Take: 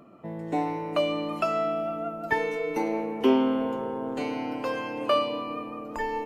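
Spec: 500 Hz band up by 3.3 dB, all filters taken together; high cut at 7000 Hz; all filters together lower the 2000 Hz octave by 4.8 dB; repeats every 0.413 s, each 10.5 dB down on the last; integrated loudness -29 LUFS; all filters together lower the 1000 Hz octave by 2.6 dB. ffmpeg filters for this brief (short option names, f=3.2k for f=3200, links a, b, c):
-af "lowpass=7k,equalizer=f=500:t=o:g=5.5,equalizer=f=1k:t=o:g=-4,equalizer=f=2k:t=o:g=-5,aecho=1:1:413|826|1239:0.299|0.0896|0.0269,volume=-2.5dB"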